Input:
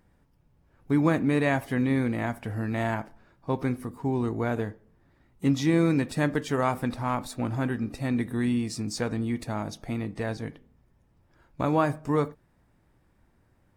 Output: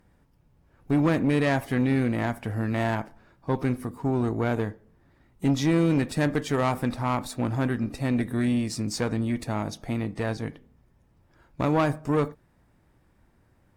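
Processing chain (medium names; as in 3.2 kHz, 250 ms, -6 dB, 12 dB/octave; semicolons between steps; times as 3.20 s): valve stage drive 20 dB, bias 0.45; trim +4 dB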